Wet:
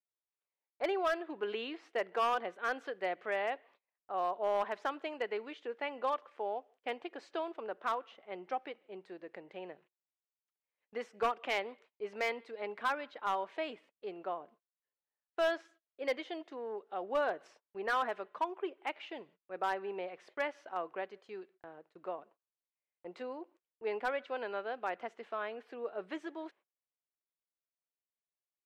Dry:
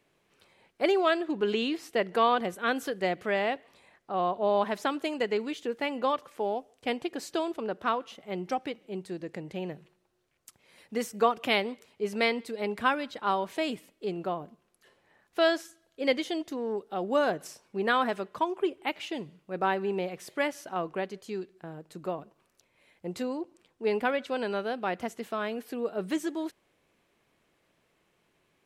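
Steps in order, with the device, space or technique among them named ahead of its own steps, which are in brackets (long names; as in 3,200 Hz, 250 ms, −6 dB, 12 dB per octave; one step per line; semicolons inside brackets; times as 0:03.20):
walkie-talkie (band-pass filter 480–2,500 Hz; hard clipping −20.5 dBFS, distortion −16 dB; noise gate −56 dBFS, range −30 dB)
level −4.5 dB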